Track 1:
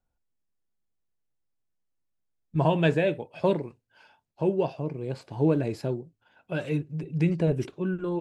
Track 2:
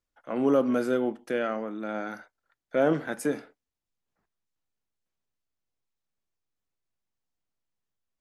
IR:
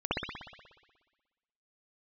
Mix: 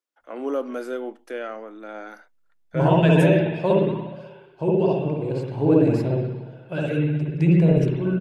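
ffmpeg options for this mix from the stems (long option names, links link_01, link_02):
-filter_complex "[0:a]adelay=200,volume=-3dB,asplit=2[link_01][link_02];[link_02]volume=-4dB[link_03];[1:a]highpass=frequency=280:width=0.5412,highpass=frequency=280:width=1.3066,volume=-2.5dB[link_04];[2:a]atrim=start_sample=2205[link_05];[link_03][link_05]afir=irnorm=-1:irlink=0[link_06];[link_01][link_04][link_06]amix=inputs=3:normalize=0"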